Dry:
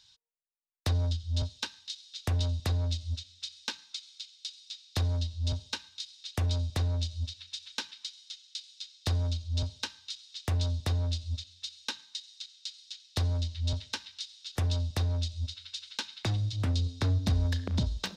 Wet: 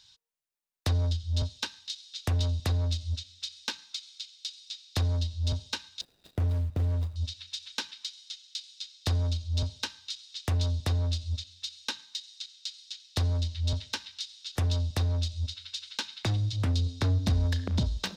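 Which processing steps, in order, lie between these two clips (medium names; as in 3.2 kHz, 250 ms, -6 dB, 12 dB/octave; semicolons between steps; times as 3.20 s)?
6.01–7.16 s: median filter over 41 samples; in parallel at -9.5 dB: hard clipper -30 dBFS, distortion -10 dB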